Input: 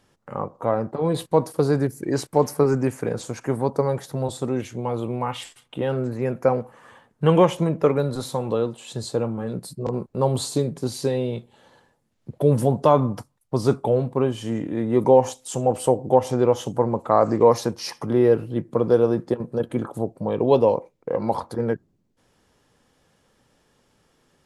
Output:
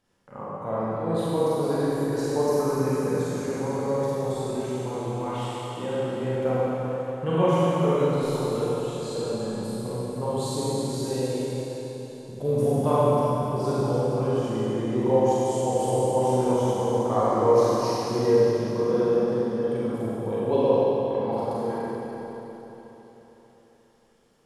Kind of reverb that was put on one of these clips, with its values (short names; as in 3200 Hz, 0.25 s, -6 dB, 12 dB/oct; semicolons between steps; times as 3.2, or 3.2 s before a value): Schroeder reverb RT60 3.9 s, combs from 32 ms, DRR -9.5 dB; gain -12 dB